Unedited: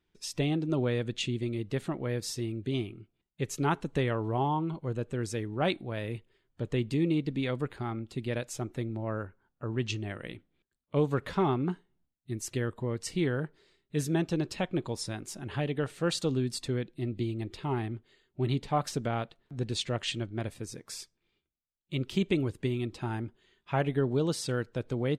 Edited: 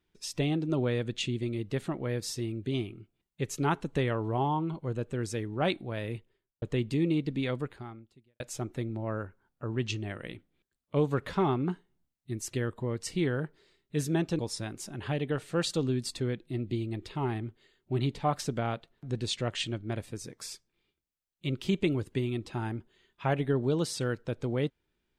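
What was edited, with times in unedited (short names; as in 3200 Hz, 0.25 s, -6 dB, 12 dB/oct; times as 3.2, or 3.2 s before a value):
6.12–6.62 studio fade out
7.54–8.4 fade out quadratic
14.39–14.87 cut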